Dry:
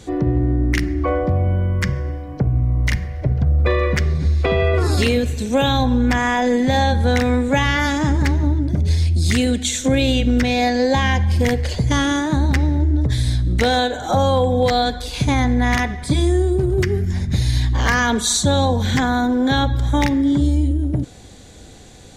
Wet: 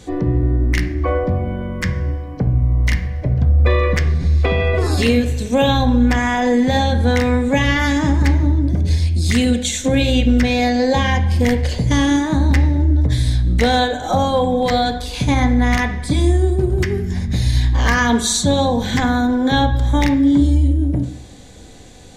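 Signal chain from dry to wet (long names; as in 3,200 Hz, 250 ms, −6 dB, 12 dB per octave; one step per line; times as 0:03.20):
notch filter 1,400 Hz, Q 20
on a send: convolution reverb RT60 0.60 s, pre-delay 4 ms, DRR 6.5 dB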